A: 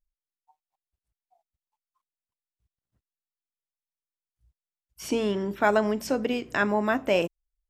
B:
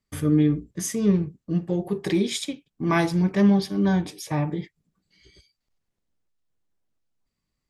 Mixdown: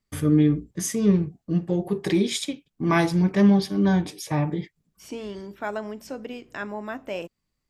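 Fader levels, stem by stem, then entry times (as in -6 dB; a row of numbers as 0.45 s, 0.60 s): -8.5 dB, +1.0 dB; 0.00 s, 0.00 s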